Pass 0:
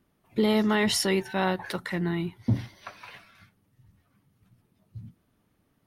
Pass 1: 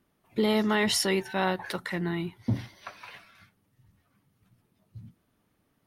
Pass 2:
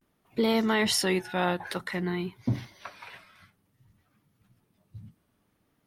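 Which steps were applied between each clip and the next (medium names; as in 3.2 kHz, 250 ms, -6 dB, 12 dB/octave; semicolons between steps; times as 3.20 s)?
bass shelf 270 Hz -4 dB
vibrato 0.54 Hz 82 cents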